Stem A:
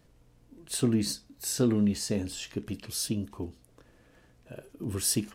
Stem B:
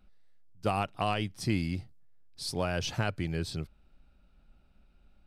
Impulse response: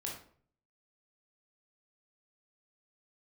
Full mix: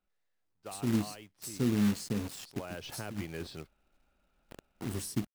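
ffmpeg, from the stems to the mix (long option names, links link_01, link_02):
-filter_complex "[0:a]highpass=frequency=88:width=0.5412,highpass=frequency=88:width=1.3066,equalizer=frequency=1000:width=0.74:gain=-11,aeval=exprs='val(0)*gte(abs(val(0)),0.0133)':channel_layout=same,volume=-1dB[link_01];[1:a]bass=frequency=250:gain=-12,treble=frequency=4000:gain=-11,volume=-1.5dB,afade=type=in:start_time=2.52:duration=0.54:silence=0.266073,asplit=2[link_02][link_03];[link_03]apad=whole_len=235545[link_04];[link_01][link_04]sidechaincompress=threshold=-49dB:ratio=8:attack=49:release=101[link_05];[link_05][link_02]amix=inputs=2:normalize=0,acrossover=split=390[link_06][link_07];[link_07]acompressor=threshold=-40dB:ratio=10[link_08];[link_06][link_08]amix=inputs=2:normalize=0,acrusher=bits=3:mode=log:mix=0:aa=0.000001"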